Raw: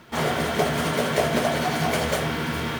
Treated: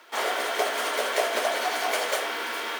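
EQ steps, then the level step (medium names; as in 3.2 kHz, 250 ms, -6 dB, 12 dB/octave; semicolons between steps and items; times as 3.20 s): Bessel high-pass 570 Hz, order 8; 0.0 dB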